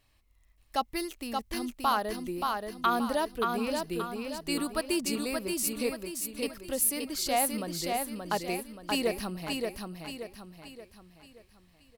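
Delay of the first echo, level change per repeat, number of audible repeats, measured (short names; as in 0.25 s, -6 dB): 0.577 s, -7.5 dB, 5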